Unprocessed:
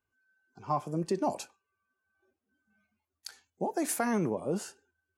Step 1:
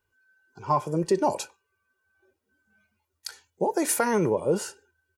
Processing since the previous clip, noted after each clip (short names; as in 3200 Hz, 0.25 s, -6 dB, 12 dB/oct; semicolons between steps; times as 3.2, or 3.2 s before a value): comb 2.1 ms, depth 49%; gain +6.5 dB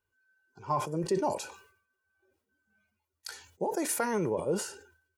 sustainer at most 95 dB/s; gain -6.5 dB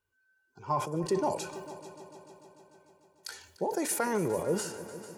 multi-head echo 0.148 s, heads all three, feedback 60%, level -19.5 dB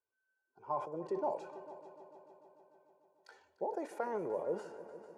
band-pass 640 Hz, Q 1.3; gain -3.5 dB